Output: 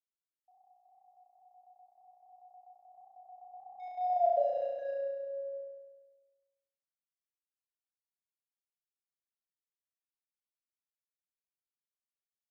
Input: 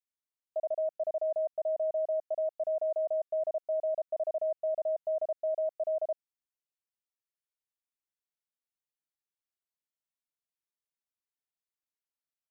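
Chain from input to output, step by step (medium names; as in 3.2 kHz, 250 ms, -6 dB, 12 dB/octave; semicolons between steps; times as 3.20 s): Doppler pass-by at 4.30 s, 49 m/s, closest 4.6 m; dynamic bell 640 Hz, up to +4 dB, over -49 dBFS, Q 4; in parallel at -9.5 dB: small samples zeroed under -42 dBFS; on the sum: distance through air 270 m; on a send: flutter echo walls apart 5.9 m, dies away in 1.3 s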